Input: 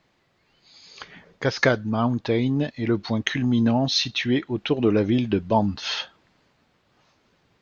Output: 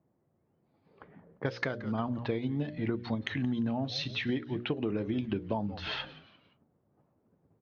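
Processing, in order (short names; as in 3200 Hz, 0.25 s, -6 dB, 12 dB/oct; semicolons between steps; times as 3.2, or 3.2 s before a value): low-pass opened by the level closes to 570 Hz, open at -19 dBFS; LPF 3800 Hz 12 dB/oct; in parallel at -3 dB: level quantiser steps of 22 dB; on the sum: notches 60/120/180/240/300/360/420/480/540/600 Hz; on a send: frequency-shifting echo 0.174 s, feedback 42%, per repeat -120 Hz, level -18.5 dB; on the sum: compressor 12:1, threshold -24 dBFS, peak gain reduction 14 dB; HPF 90 Hz; low shelf 200 Hz +4.5 dB; gain -5.5 dB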